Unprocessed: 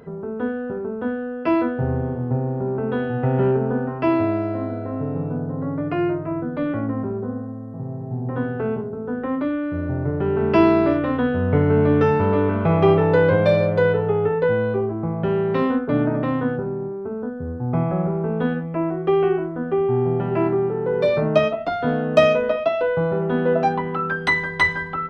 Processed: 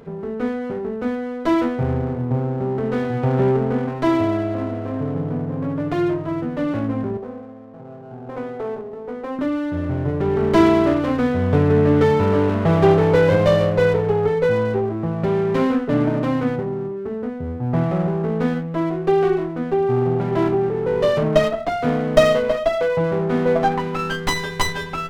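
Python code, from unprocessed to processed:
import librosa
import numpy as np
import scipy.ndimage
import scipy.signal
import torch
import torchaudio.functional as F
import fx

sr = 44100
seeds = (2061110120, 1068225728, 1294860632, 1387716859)

y = fx.tracing_dist(x, sr, depth_ms=0.11)
y = fx.bandpass_q(y, sr, hz=670.0, q=1.1, at=(7.17, 9.39))
y = fx.running_max(y, sr, window=9)
y = y * 10.0 ** (1.5 / 20.0)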